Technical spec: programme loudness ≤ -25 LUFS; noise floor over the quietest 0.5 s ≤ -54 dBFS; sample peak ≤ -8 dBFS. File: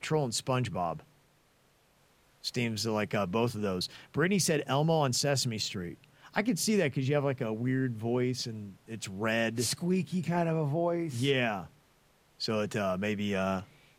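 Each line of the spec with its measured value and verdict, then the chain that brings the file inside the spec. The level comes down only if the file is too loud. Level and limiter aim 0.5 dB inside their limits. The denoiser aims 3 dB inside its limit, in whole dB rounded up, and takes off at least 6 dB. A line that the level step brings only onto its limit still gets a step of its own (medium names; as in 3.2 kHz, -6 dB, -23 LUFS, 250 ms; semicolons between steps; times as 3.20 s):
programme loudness -31.0 LUFS: pass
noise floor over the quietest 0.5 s -67 dBFS: pass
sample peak -12.0 dBFS: pass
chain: none needed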